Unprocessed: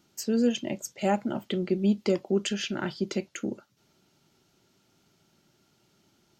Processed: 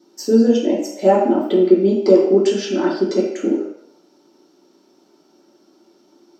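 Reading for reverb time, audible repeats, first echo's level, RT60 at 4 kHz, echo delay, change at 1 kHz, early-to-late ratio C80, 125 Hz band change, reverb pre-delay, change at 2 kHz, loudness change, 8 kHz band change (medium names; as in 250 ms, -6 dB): 0.70 s, no echo, no echo, 0.70 s, no echo, +11.5 dB, 6.5 dB, no reading, 3 ms, +4.0 dB, +12.5 dB, +3.0 dB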